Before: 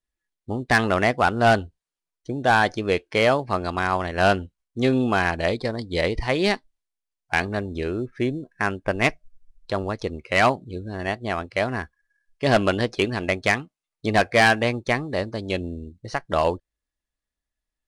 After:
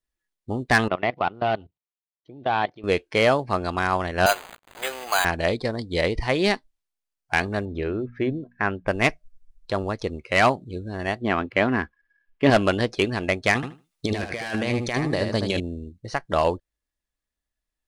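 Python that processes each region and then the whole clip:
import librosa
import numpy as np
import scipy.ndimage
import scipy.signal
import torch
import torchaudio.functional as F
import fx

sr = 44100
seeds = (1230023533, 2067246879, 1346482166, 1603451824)

y = fx.chain(x, sr, fx.block_float(bits=7),
    fx.level_steps(step_db=20),
    fx.cabinet(low_hz=130.0, low_slope=12, high_hz=3600.0, hz=(230.0, 500.0, 1600.0), db=(-5, -3, -9)), at=(0.88, 2.84))
y = fx.chain(y, sr, fx.zero_step(step_db=-28.0),
    fx.highpass(hz=630.0, slope=24),
    fx.resample_bad(factor=8, down='none', up='hold'), at=(4.26, 5.25))
y = fx.chain(y, sr, fx.lowpass(hz=2900.0, slope=12),
    fx.hum_notches(base_hz=60, count=4), at=(7.65, 8.87))
y = fx.chain(y, sr, fx.median_filter(points=9),
    fx.curve_eq(hz=(120.0, 270.0, 650.0, 1000.0, 3000.0, 8900.0), db=(0, 9, 0, 4, 5, -15)), at=(11.21, 12.5))
y = fx.chain(y, sr, fx.high_shelf(hz=3200.0, db=6.0),
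    fx.over_compress(threshold_db=-26.0, ratio=-1.0),
    fx.echo_feedback(ms=77, feedback_pct=16, wet_db=-6.5), at=(13.55, 15.6))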